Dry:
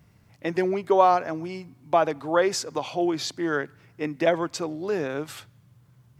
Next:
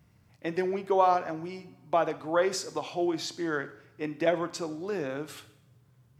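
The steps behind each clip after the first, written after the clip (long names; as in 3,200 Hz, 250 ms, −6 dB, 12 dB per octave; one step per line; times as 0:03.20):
coupled-rooms reverb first 0.7 s, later 2.6 s, from −26 dB, DRR 11 dB
level −5 dB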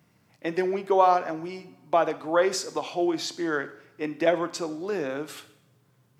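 high-pass filter 180 Hz 12 dB per octave
level +3.5 dB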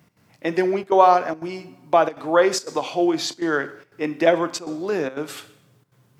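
gate pattern "x.xxxxxxxx.xxxx" 180 BPM −12 dB
level +5.5 dB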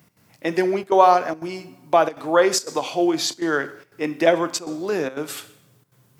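high-shelf EQ 6,800 Hz +9 dB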